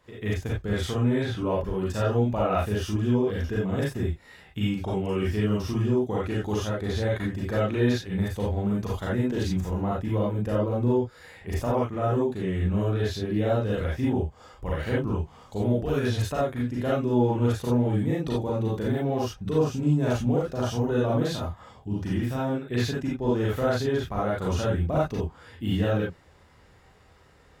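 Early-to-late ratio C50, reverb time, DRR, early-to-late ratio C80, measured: −0.5 dB, non-exponential decay, −6.5 dB, 7.5 dB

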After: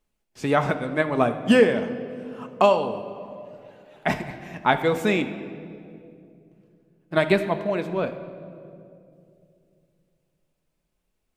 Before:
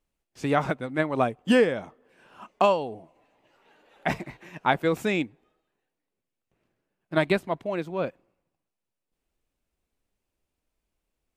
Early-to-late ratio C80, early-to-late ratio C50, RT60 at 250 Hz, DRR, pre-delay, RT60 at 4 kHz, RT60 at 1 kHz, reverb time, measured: 12.0 dB, 11.0 dB, 3.2 s, 7.0 dB, 5 ms, 1.6 s, 2.2 s, 2.6 s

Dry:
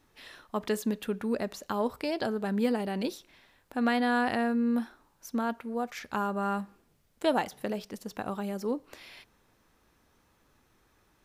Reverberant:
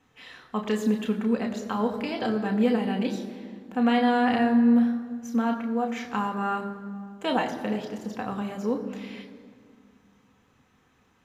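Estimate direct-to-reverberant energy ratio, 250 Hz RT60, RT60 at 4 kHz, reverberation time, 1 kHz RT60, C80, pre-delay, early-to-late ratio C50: 2.0 dB, 2.7 s, 1.3 s, 2.1 s, 1.9 s, 10.5 dB, 3 ms, 10.0 dB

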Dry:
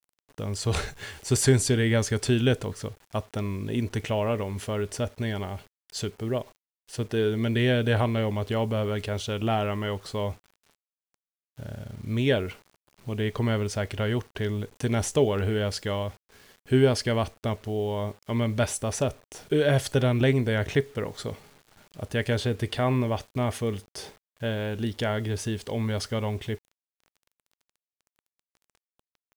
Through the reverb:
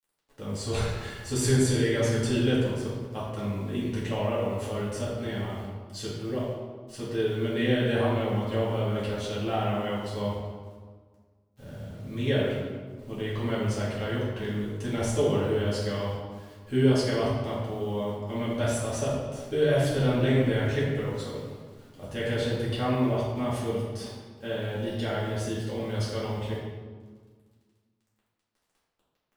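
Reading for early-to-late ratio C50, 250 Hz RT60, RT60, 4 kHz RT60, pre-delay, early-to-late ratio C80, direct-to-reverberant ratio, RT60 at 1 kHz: 0.0 dB, 2.1 s, 1.6 s, 1.0 s, 4 ms, 2.0 dB, −8.5 dB, 1.5 s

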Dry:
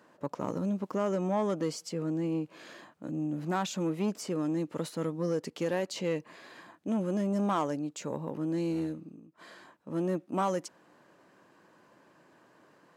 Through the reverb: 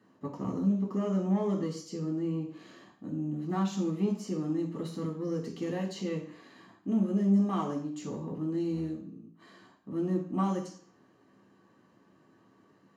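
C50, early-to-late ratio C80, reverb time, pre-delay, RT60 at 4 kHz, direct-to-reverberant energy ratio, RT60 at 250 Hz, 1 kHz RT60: 7.0 dB, 12.0 dB, 0.55 s, 3 ms, 0.55 s, −1.0 dB, 0.55 s, 0.50 s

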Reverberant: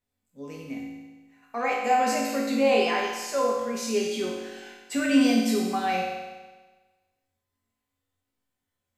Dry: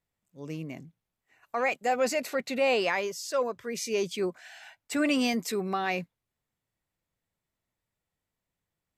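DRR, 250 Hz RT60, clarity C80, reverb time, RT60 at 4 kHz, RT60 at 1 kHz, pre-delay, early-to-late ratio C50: −4.5 dB, 1.3 s, 3.0 dB, 1.3 s, 1.3 s, 1.3 s, 4 ms, 1.0 dB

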